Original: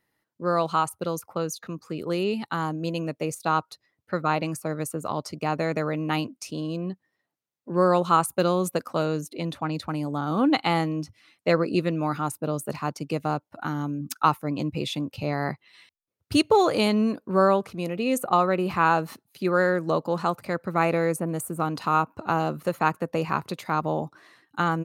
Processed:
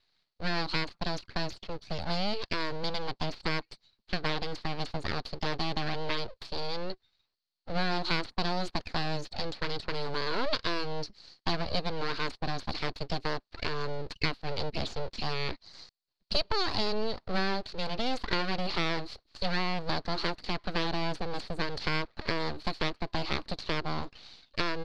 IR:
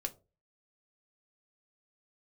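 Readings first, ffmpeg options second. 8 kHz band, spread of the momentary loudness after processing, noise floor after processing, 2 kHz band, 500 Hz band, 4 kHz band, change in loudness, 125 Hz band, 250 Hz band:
−13.5 dB, 7 LU, −80 dBFS, −3.0 dB, −10.0 dB, +3.5 dB, −7.5 dB, −7.0 dB, −10.5 dB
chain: -filter_complex "[0:a]acrossover=split=230|1700[link_01][link_02][link_03];[link_01]acompressor=threshold=-33dB:ratio=4[link_04];[link_02]acompressor=threshold=-29dB:ratio=4[link_05];[link_03]acompressor=threshold=-43dB:ratio=4[link_06];[link_04][link_05][link_06]amix=inputs=3:normalize=0,aeval=exprs='abs(val(0))':channel_layout=same,lowpass=frequency=4400:width_type=q:width=7.7"

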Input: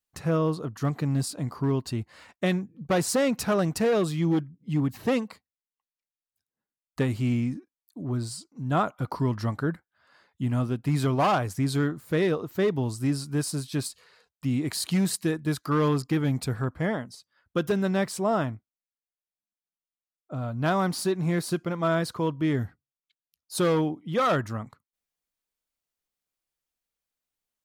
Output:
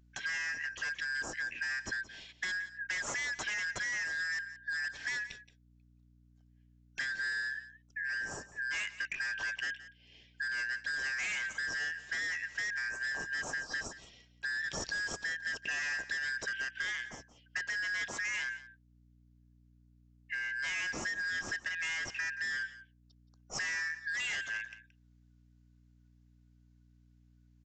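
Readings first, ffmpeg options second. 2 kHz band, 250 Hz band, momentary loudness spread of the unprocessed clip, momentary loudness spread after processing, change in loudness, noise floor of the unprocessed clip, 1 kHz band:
+6.5 dB, −29.5 dB, 10 LU, 6 LU, −8.0 dB, below −85 dBFS, −18.5 dB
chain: -af "afftfilt=real='real(if(lt(b,272),68*(eq(floor(b/68),0)*3+eq(floor(b/68),1)*0+eq(floor(b/68),2)*1+eq(floor(b/68),3)*2)+mod(b,68),b),0)':imag='imag(if(lt(b,272),68*(eq(floor(b/68),0)*3+eq(floor(b/68),1)*0+eq(floor(b/68),2)*1+eq(floor(b/68),3)*2)+mod(b,68),b),0)':win_size=2048:overlap=0.75,aresample=16000,asoftclip=type=hard:threshold=-27dB,aresample=44100,acompressor=threshold=-34dB:ratio=16,aeval=exprs='val(0)+0.000631*(sin(2*PI*60*n/s)+sin(2*PI*2*60*n/s)/2+sin(2*PI*3*60*n/s)/3+sin(2*PI*4*60*n/s)/4+sin(2*PI*5*60*n/s)/5)':channel_layout=same,acompressor=mode=upward:threshold=-58dB:ratio=2.5,aecho=1:1:174:0.158"

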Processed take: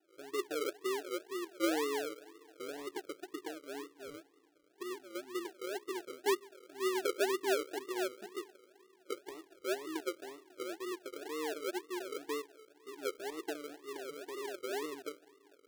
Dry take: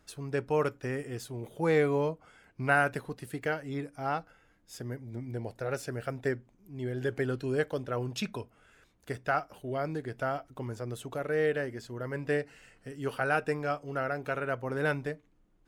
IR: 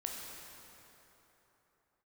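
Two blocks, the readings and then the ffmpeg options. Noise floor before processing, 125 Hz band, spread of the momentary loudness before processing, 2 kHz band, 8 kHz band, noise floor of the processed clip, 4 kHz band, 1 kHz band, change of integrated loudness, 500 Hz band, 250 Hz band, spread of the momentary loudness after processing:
−66 dBFS, below −35 dB, 12 LU, −10.0 dB, +3.5 dB, −67 dBFS, +2.5 dB, −8.5 dB, −6.5 dB, −6.0 dB, −5.0 dB, 14 LU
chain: -filter_complex "[0:a]asuperpass=centerf=360:order=4:qfactor=5.2,asplit=2[link_01][link_02];[1:a]atrim=start_sample=2205,asetrate=38367,aresample=44100[link_03];[link_02][link_03]afir=irnorm=-1:irlink=0,volume=-18dB[link_04];[link_01][link_04]amix=inputs=2:normalize=0,acrusher=samples=39:mix=1:aa=0.000001:lfo=1:lforange=23.4:lforate=2,volume=4.5dB"

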